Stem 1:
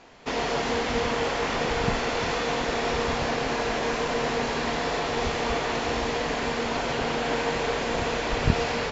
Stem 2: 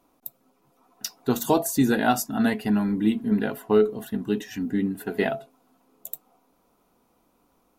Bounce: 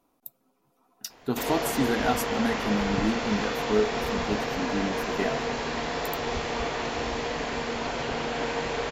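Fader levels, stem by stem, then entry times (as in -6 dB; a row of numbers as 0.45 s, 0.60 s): -3.0 dB, -5.0 dB; 1.10 s, 0.00 s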